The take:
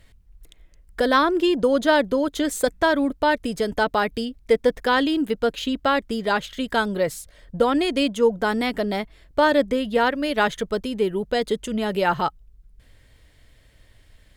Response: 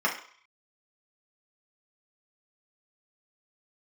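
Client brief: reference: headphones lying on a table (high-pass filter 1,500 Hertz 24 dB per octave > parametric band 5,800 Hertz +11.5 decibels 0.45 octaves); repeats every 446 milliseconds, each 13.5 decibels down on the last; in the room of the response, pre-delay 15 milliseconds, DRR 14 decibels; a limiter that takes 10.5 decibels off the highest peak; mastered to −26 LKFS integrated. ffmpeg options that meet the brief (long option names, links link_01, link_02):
-filter_complex "[0:a]alimiter=limit=-16.5dB:level=0:latency=1,aecho=1:1:446|892:0.211|0.0444,asplit=2[link_01][link_02];[1:a]atrim=start_sample=2205,adelay=15[link_03];[link_02][link_03]afir=irnorm=-1:irlink=0,volume=-26.5dB[link_04];[link_01][link_04]amix=inputs=2:normalize=0,highpass=frequency=1500:width=0.5412,highpass=frequency=1500:width=1.3066,equalizer=frequency=5800:width_type=o:width=0.45:gain=11.5,volume=7.5dB"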